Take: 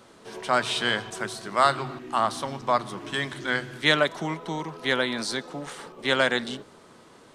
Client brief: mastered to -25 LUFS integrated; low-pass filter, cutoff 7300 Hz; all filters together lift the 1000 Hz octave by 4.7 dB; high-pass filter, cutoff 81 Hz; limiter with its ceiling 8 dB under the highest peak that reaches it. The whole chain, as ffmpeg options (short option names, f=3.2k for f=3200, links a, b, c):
-af "highpass=81,lowpass=7.3k,equalizer=f=1k:t=o:g=6,volume=1.5dB,alimiter=limit=-9dB:level=0:latency=1"